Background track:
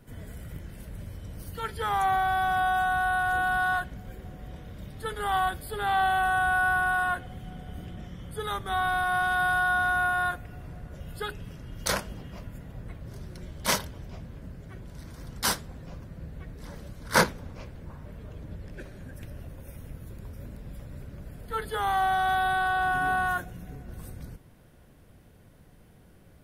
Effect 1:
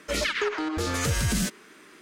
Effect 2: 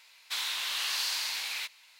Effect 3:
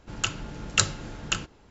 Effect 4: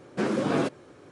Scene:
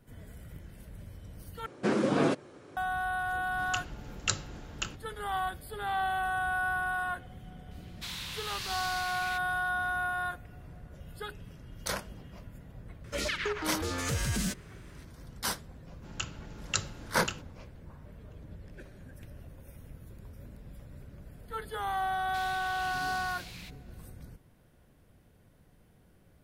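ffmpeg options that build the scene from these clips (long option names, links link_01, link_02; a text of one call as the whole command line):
ffmpeg -i bed.wav -i cue0.wav -i cue1.wav -i cue2.wav -i cue3.wav -filter_complex "[3:a]asplit=2[link_01][link_02];[2:a]asplit=2[link_03][link_04];[0:a]volume=-6.5dB[link_05];[link_03]afreqshift=-16[link_06];[link_05]asplit=2[link_07][link_08];[link_07]atrim=end=1.664[link_09];[4:a]atrim=end=1.11,asetpts=PTS-STARTPTS,volume=-1dB[link_10];[link_08]atrim=start=2.766[link_11];[link_01]atrim=end=1.7,asetpts=PTS-STARTPTS,volume=-8dB,afade=type=in:duration=0.004:curve=hsin,afade=type=out:start_time=1.696:duration=0.004:curve=hsin,adelay=3500[link_12];[link_06]atrim=end=1.99,asetpts=PTS-STARTPTS,volume=-7dB,afade=type=in:duration=0.004:curve=hsin,afade=type=out:start_time=1.986:duration=0.004:curve=hsin,adelay=7710[link_13];[1:a]atrim=end=2.01,asetpts=PTS-STARTPTS,volume=-6dB,afade=type=in:duration=0.004:curve=hsin,afade=type=out:start_time=2.006:duration=0.004:curve=hsin,adelay=13040[link_14];[link_02]atrim=end=1.7,asetpts=PTS-STARTPTS,volume=-9dB,afade=type=in:duration=0.004:curve=hsin,afade=type=out:start_time=1.696:duration=0.004:curve=hsin,adelay=15960[link_15];[link_04]atrim=end=1.99,asetpts=PTS-STARTPTS,volume=-13dB,afade=type=in:duration=0.004:curve=hsin,afade=type=out:start_time=1.986:duration=0.004:curve=hsin,adelay=22030[link_16];[link_09][link_10]acrossfade=duration=0.004:curve1=hsin:curve2=hsin[link_17];[link_17][link_11]acrossfade=duration=0.004:curve1=hsin:curve2=hsin[link_18];[link_18][link_12][link_13][link_14][link_15][link_16]amix=inputs=6:normalize=0" out.wav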